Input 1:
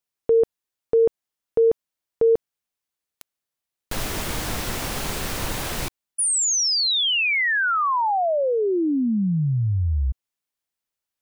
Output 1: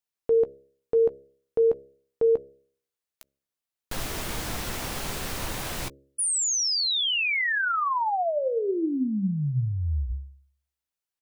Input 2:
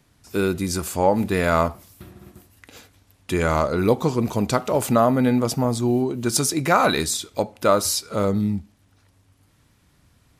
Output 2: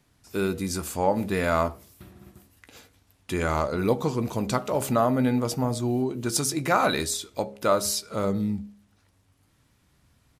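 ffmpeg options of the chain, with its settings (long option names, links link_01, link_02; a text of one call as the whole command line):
ffmpeg -i in.wav -filter_complex "[0:a]asplit=2[link_01][link_02];[link_02]adelay=15,volume=-12.5dB[link_03];[link_01][link_03]amix=inputs=2:normalize=0,bandreject=frequency=68.29:width_type=h:width=4,bandreject=frequency=136.58:width_type=h:width=4,bandreject=frequency=204.87:width_type=h:width=4,bandreject=frequency=273.16:width_type=h:width=4,bandreject=frequency=341.45:width_type=h:width=4,bandreject=frequency=409.74:width_type=h:width=4,bandreject=frequency=478.03:width_type=h:width=4,bandreject=frequency=546.32:width_type=h:width=4,bandreject=frequency=614.61:width_type=h:width=4,volume=-4.5dB" out.wav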